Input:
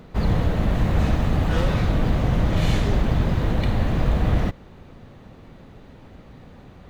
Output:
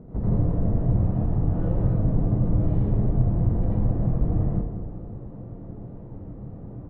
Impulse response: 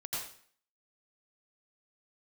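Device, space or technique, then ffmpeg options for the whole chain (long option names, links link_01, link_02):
television next door: -filter_complex "[0:a]asplit=2[link_01][link_02];[link_02]adelay=197,lowpass=frequency=2000:poles=1,volume=-17.5dB,asplit=2[link_03][link_04];[link_04]adelay=197,lowpass=frequency=2000:poles=1,volume=0.52,asplit=2[link_05][link_06];[link_06]adelay=197,lowpass=frequency=2000:poles=1,volume=0.52,asplit=2[link_07][link_08];[link_08]adelay=197,lowpass=frequency=2000:poles=1,volume=0.52[link_09];[link_01][link_03][link_05][link_07][link_09]amix=inputs=5:normalize=0,acompressor=threshold=-25dB:ratio=6,lowpass=480[link_10];[1:a]atrim=start_sample=2205[link_11];[link_10][link_11]afir=irnorm=-1:irlink=0,volume=6dB"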